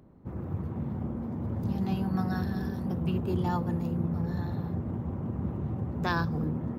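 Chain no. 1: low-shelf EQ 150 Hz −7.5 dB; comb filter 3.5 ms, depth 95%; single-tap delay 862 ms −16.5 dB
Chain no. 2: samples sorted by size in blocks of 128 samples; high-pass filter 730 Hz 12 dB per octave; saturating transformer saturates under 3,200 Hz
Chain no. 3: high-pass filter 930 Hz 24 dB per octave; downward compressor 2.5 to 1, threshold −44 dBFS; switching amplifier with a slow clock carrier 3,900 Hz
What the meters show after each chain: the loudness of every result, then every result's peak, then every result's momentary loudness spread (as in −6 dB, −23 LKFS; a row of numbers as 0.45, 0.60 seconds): −33.0, −37.0, −48.5 LKFS; −15.5, −13.0, −30.5 dBFS; 8, 6, 4 LU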